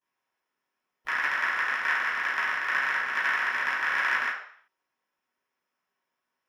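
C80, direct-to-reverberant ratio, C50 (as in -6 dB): 7.0 dB, -16.5 dB, 2.5 dB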